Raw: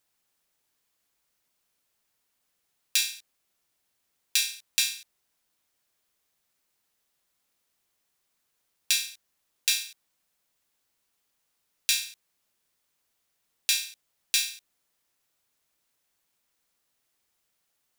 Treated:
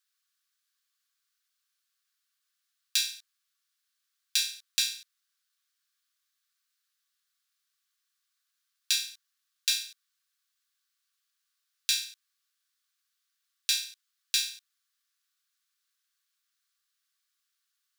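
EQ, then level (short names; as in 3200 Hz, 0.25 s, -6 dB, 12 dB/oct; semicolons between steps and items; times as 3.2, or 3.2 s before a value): rippled Chebyshev high-pass 1100 Hz, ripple 6 dB; 0.0 dB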